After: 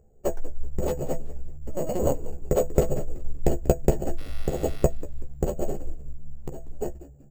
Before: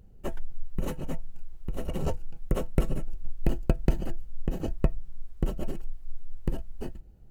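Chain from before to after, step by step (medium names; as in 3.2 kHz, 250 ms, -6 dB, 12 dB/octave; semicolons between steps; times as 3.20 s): local Wiener filter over 9 samples; gate -36 dBFS, range -7 dB; high-order bell 550 Hz +10.5 dB 1.3 oct; 1.55–2.13 s: LPC vocoder at 8 kHz pitch kept; 4.17–4.83 s: mains buzz 400 Hz, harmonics 35, -50 dBFS 0 dB/octave; 5.96–6.62 s: compression 10:1, threshold -30 dBFS, peak gain reduction 11.5 dB; doubling 14 ms -5.5 dB; frequency-shifting echo 189 ms, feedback 33%, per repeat -75 Hz, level -16.5 dB; careless resampling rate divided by 6×, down none, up hold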